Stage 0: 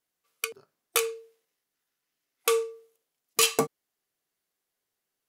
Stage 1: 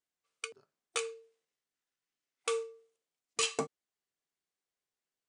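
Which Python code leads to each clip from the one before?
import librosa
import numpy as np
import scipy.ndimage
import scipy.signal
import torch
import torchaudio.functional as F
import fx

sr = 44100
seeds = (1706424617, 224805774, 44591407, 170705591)

y = scipy.signal.sosfilt(scipy.signal.cheby1(6, 1.0, 9300.0, 'lowpass', fs=sr, output='sos'), x)
y = y * librosa.db_to_amplitude(-8.0)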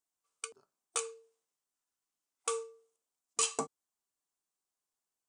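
y = fx.graphic_eq(x, sr, hz=(125, 500, 1000, 2000, 4000, 8000), db=(-7, -4, 5, -8, -4, 6))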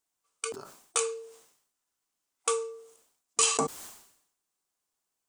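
y = fx.sustainer(x, sr, db_per_s=79.0)
y = y * librosa.db_to_amplitude(6.0)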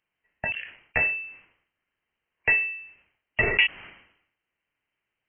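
y = fx.freq_invert(x, sr, carrier_hz=3100)
y = y * librosa.db_to_amplitude(8.0)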